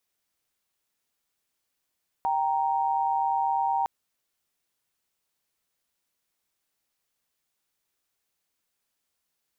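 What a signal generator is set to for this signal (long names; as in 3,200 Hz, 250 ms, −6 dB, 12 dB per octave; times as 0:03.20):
held notes G5/A#5 sine, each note −25.5 dBFS 1.61 s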